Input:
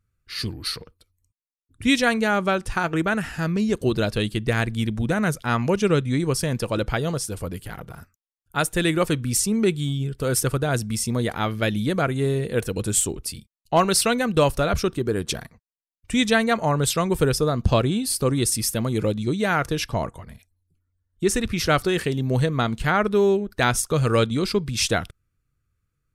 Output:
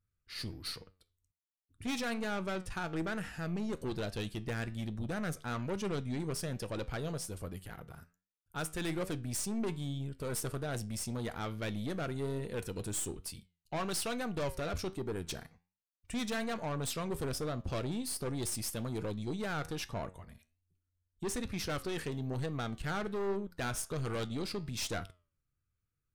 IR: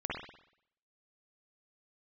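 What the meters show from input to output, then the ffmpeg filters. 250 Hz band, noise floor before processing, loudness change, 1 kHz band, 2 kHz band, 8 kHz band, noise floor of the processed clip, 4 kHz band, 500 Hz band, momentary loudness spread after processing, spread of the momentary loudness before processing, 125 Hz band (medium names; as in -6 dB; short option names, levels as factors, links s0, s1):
-14.5 dB, -78 dBFS, -15.0 dB, -16.0 dB, -15.5 dB, -14.0 dB, under -85 dBFS, -14.5 dB, -15.5 dB, 7 LU, 8 LU, -14.5 dB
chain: -af "aeval=exprs='(tanh(12.6*val(0)+0.35)-tanh(0.35))/12.6':c=same,flanger=delay=9.8:depth=3.4:regen=81:speed=1.2:shape=triangular,volume=0.531"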